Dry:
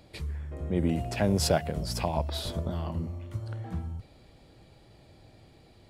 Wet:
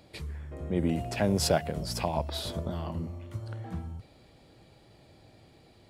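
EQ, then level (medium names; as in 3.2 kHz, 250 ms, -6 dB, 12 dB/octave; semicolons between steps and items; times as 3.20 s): bass shelf 63 Hz -9 dB; 0.0 dB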